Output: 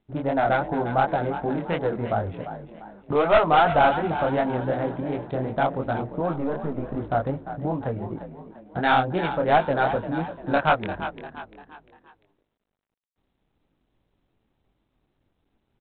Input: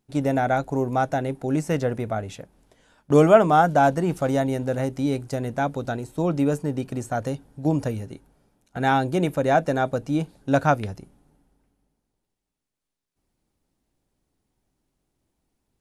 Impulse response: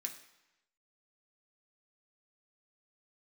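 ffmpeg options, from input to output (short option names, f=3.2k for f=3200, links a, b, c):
-filter_complex "[0:a]asettb=1/sr,asplit=3[a][b][c];[a]atrim=end=6.324[d];[b]atrim=start=6.32:end=6.96,asetpts=PTS-STARTPTS,afade=t=in:d=0.004:c=qsin,afade=t=out:st=0.636:d=0.004:c=qsin,aeval=exprs='if(lt(val(0),0),0.447*val(0),val(0))':c=same[e];[c]atrim=start=6.956[f];[d][e]acrossfade=d=0.004:c1=hsin:c2=qsin[g];[g][f]acrossfade=d=0.004:c1=qsin:c2=hsin,acrossover=split=670|1600[h][i][j];[h]acompressor=threshold=-31dB:ratio=8[k];[j]acrusher=bits=4:mix=0:aa=0.5[l];[k][i][l]amix=inputs=3:normalize=0,flanger=delay=18:depth=7.3:speed=2.7,aeval=exprs='0.398*(cos(1*acos(clip(val(0)/0.398,-1,1)))-cos(1*PI/2))+0.00355*(cos(2*acos(clip(val(0)/0.398,-1,1)))-cos(2*PI/2))+0.02*(cos(4*acos(clip(val(0)/0.398,-1,1)))-cos(4*PI/2))+0.126*(cos(5*acos(clip(val(0)/0.398,-1,1)))-cos(5*PI/2))+0.0447*(cos(6*acos(clip(val(0)/0.398,-1,1)))-cos(6*PI/2))':c=same,asplit=2[m][n];[n]asplit=4[o][p][q][r];[o]adelay=347,afreqshift=51,volume=-11dB[s];[p]adelay=694,afreqshift=102,volume=-18.7dB[t];[q]adelay=1041,afreqshift=153,volume=-26.5dB[u];[r]adelay=1388,afreqshift=204,volume=-34.2dB[v];[s][t][u][v]amix=inputs=4:normalize=0[w];[m][w]amix=inputs=2:normalize=0" -ar 8000 -c:a adpcm_g726 -b:a 32k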